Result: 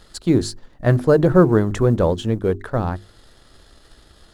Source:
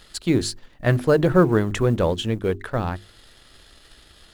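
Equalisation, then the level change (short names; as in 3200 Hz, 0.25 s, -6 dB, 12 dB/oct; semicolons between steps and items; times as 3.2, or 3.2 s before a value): bell 2600 Hz -9 dB 1.3 oct; high shelf 8200 Hz -9 dB; +3.5 dB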